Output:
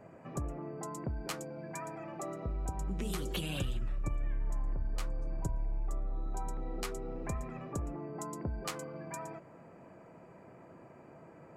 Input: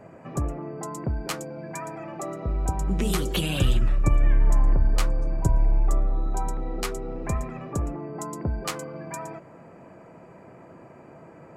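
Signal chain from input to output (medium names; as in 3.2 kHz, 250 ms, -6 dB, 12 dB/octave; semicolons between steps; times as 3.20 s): compression 3:1, threshold -26 dBFS, peak gain reduction 9 dB; trim -7 dB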